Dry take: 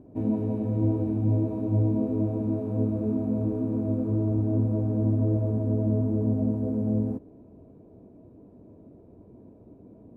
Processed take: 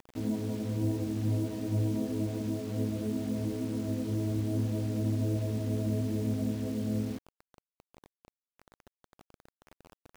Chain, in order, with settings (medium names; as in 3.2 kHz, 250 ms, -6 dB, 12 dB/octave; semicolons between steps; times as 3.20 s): bit crusher 7-bit; trim -6 dB